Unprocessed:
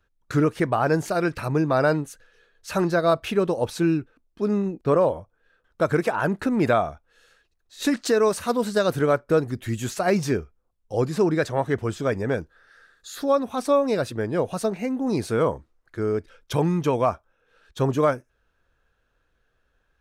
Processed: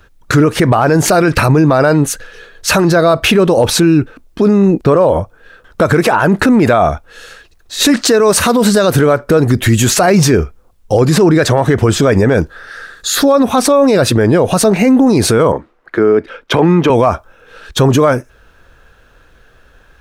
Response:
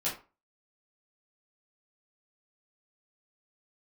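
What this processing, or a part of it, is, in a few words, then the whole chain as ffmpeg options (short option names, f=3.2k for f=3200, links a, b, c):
loud club master: -filter_complex "[0:a]asettb=1/sr,asplit=3[a][b][c];[a]atrim=end=15.524[d];[b]atrim=start=15.52:end=16.9,asetpts=PTS-STARTPTS,afade=t=in:d=0.004:c=qsin,afade=t=out:st=1.376:d=0.004:c=qsin,acrossover=split=180 3300:gain=0.126 1 0.141[e][f][g];[e][f][g]amix=inputs=3:normalize=0[h];[c]atrim=start=16.896[i];[d][h]acrossfade=d=0.004:c1=hsin:c2=qsin[j];[j][i]acrossfade=d=0.004:c1=qsin:c2=hsin,acompressor=threshold=-22dB:ratio=2,asoftclip=type=hard:threshold=-14.5dB,alimiter=level_in=24.5dB:limit=-1dB:release=50:level=0:latency=1,volume=-1dB"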